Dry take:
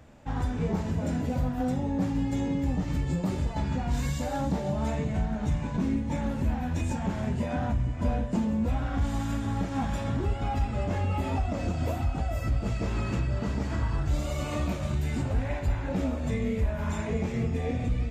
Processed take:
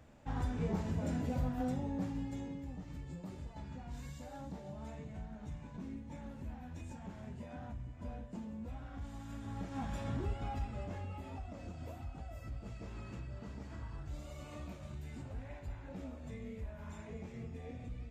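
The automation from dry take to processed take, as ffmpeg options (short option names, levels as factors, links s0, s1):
-af "volume=1.26,afade=t=out:st=1.54:d=1.12:silence=0.298538,afade=t=in:st=9.22:d=0.92:silence=0.354813,afade=t=out:st=10.14:d=1.06:silence=0.375837"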